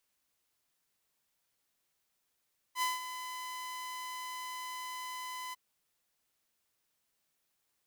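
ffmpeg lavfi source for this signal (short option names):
-f lavfi -i "aevalsrc='0.0501*(2*mod(1010*t,1)-1)':d=2.801:s=44100,afade=t=in:d=0.07,afade=t=out:st=0.07:d=0.172:silence=0.282,afade=t=out:st=2.78:d=0.021"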